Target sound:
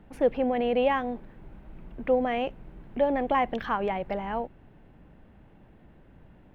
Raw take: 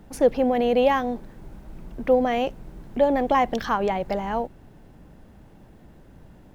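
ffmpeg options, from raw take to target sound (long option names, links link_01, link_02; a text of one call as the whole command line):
ffmpeg -i in.wav -af "highshelf=frequency=3900:width_type=q:width=1.5:gain=-12,volume=-5dB" out.wav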